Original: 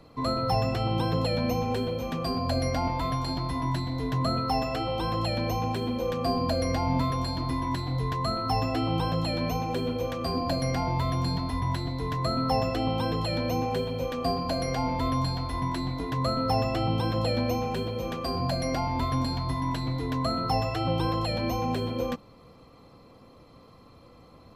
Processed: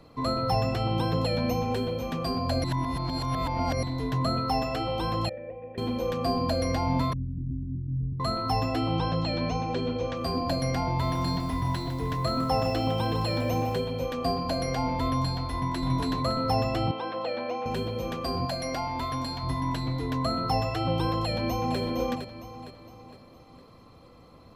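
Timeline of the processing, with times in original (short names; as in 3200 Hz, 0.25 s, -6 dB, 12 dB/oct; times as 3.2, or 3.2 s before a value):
2.64–3.83 reverse
5.29–5.78 vocal tract filter e
7.13–8.2 inverse Chebyshev low-pass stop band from 810 Hz, stop band 60 dB
8.95–10.17 LPF 6400 Hz 24 dB/oct
10.87–13.76 lo-fi delay 0.155 s, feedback 35%, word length 8-bit, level -8.5 dB
15.54–15.94 echo throw 0.28 s, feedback 25%, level 0 dB
16.91–17.66 BPF 450–2900 Hz
18.45–19.43 low shelf 340 Hz -8 dB
21.18–21.78 echo throw 0.46 s, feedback 45%, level -7.5 dB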